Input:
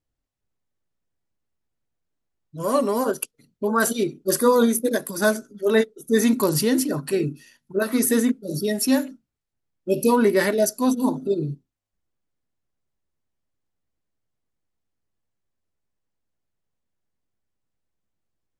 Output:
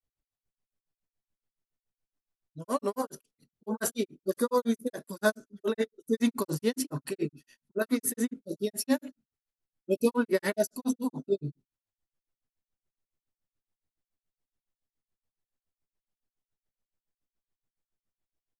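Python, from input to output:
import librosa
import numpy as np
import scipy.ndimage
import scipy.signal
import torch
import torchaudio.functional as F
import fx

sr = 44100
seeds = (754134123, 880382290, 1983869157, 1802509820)

y = fx.granulator(x, sr, seeds[0], grain_ms=114.0, per_s=7.1, spray_ms=23.0, spread_st=0)
y = F.gain(torch.from_numpy(y), -4.0).numpy()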